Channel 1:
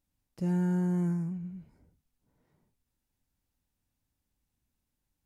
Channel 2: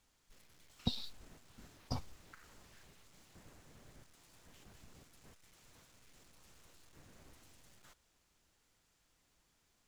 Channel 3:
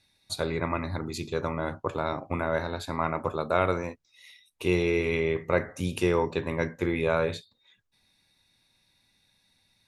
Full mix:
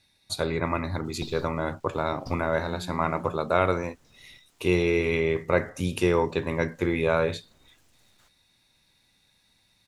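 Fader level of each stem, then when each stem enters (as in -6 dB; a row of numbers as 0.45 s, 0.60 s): -12.5 dB, -1.0 dB, +2.0 dB; 2.15 s, 0.35 s, 0.00 s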